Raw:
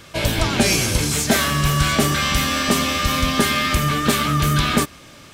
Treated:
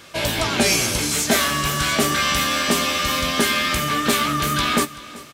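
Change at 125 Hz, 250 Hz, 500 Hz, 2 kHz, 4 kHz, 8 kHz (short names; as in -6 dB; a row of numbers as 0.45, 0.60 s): -8.0, -3.0, -0.5, +0.5, +0.5, +0.5 dB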